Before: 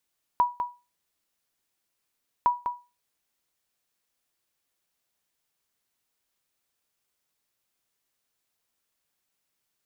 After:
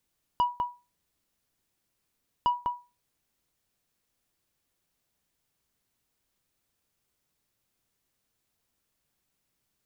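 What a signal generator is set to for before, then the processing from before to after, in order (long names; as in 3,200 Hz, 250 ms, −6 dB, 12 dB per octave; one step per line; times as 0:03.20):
ping with an echo 973 Hz, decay 0.28 s, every 2.06 s, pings 2, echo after 0.20 s, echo −7.5 dB −13.5 dBFS
soft clipping −21 dBFS
low-shelf EQ 310 Hz +11.5 dB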